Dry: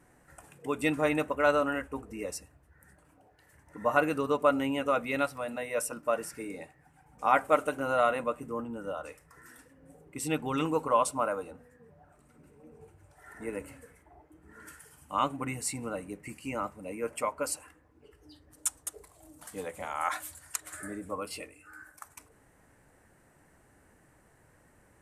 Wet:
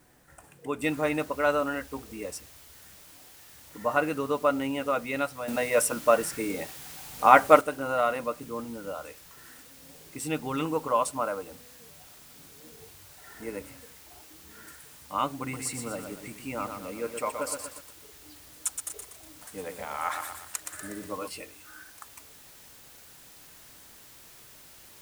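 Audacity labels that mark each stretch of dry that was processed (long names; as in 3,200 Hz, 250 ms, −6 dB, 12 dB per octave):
0.820000	0.820000	noise floor change −67 dB −52 dB
5.480000	7.610000	clip gain +8 dB
15.410000	21.290000	feedback echo at a low word length 121 ms, feedback 55%, word length 8 bits, level −5.5 dB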